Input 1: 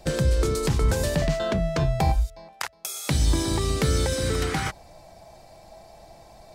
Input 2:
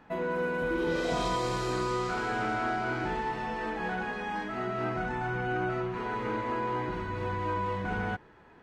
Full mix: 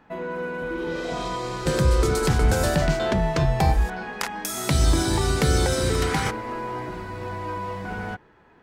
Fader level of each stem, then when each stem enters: +2.0, +0.5 dB; 1.60, 0.00 s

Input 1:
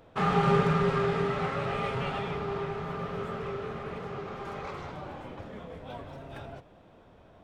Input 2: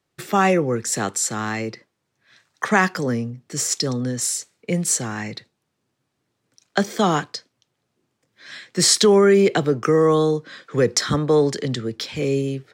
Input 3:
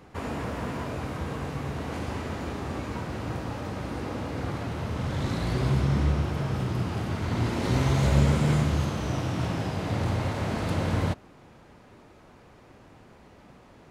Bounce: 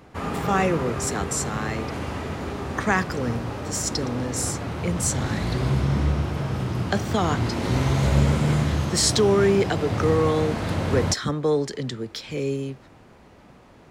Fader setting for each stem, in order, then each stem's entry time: -6.5, -5.0, +2.0 dB; 0.00, 0.15, 0.00 s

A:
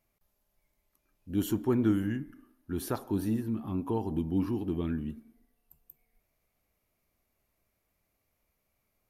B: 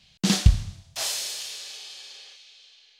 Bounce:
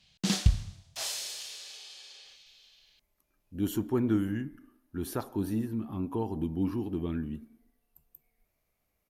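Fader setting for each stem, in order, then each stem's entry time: -1.0, -6.5 dB; 2.25, 0.00 s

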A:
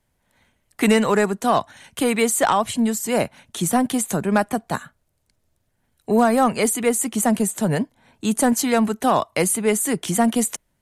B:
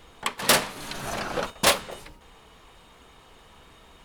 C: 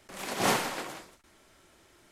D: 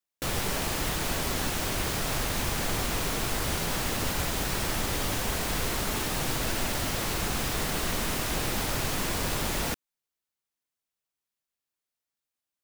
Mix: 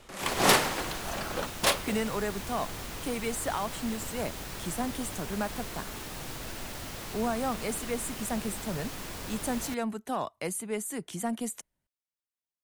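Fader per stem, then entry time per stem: -14.0, -5.5, +2.5, -10.0 dB; 1.05, 0.00, 0.00, 0.00 s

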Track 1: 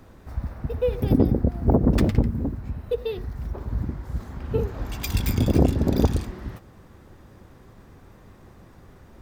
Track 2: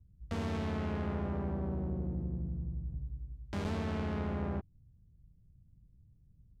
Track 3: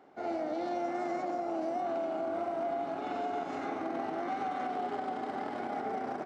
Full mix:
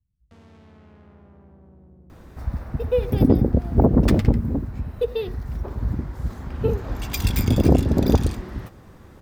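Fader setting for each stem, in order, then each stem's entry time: +2.5 dB, -14.5 dB, off; 2.10 s, 0.00 s, off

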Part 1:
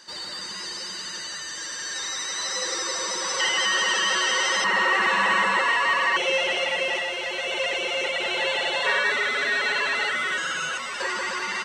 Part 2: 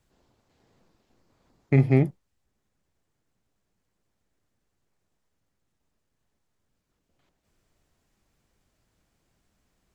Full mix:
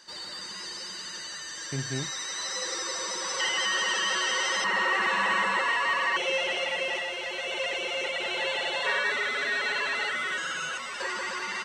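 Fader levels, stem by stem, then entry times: -4.5, -14.5 dB; 0.00, 0.00 s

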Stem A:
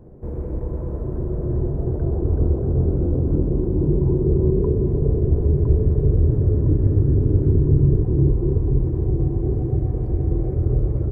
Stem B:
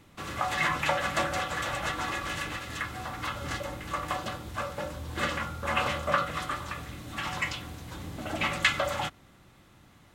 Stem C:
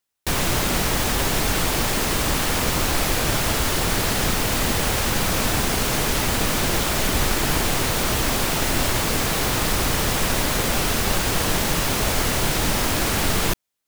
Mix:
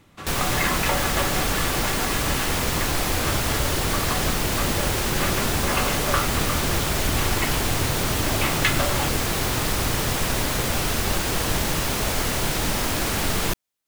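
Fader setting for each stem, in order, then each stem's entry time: -14.0, +1.5, -2.5 dB; 0.85, 0.00, 0.00 s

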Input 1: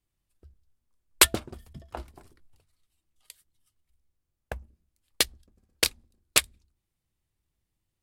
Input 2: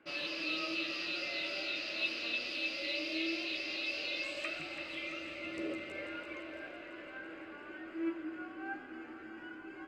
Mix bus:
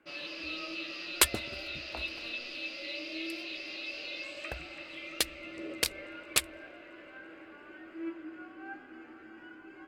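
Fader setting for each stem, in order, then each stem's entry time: -6.0, -2.5 dB; 0.00, 0.00 s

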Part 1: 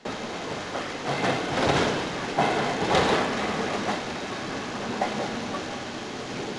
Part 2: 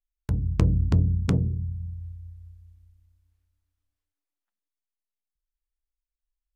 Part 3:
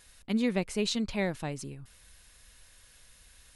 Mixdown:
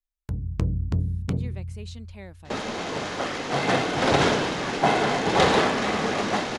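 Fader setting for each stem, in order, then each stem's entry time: +2.5, -4.0, -13.0 dB; 2.45, 0.00, 1.00 s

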